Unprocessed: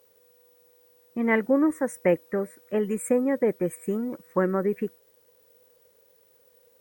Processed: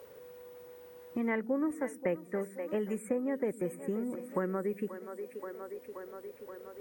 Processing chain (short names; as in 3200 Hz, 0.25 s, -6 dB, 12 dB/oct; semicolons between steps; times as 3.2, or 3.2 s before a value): on a send: split-band echo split 320 Hz, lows 0.102 s, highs 0.529 s, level -15 dB; on the sum: three-band squash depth 70%; gain -8.5 dB